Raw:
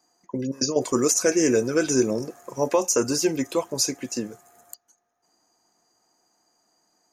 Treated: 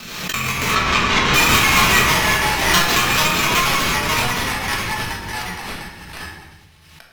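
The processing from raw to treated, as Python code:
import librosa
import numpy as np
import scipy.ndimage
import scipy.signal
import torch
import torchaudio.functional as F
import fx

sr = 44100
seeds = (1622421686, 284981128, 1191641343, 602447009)

y = fx.bit_reversed(x, sr, seeds[0], block=128)
y = fx.sample_hold(y, sr, seeds[1], rate_hz=9800.0, jitter_pct=0)
y = fx.rotary(y, sr, hz=5.0)
y = fx.ring_mod(y, sr, carrier_hz=740.0, at=(1.99, 2.66), fade=0.02)
y = fx.echo_pitch(y, sr, ms=103, semitones=-2, count=3, db_per_echo=-3.0)
y = fx.air_absorb(y, sr, metres=110.0, at=(0.71, 1.34))
y = fx.echo_wet_highpass(y, sr, ms=305, feedback_pct=68, hz=2500.0, wet_db=-20.5)
y = fx.room_shoebox(y, sr, seeds[2], volume_m3=450.0, walls='mixed', distance_m=1.5)
y = fx.pre_swell(y, sr, db_per_s=43.0)
y = y * librosa.db_to_amplitude(3.0)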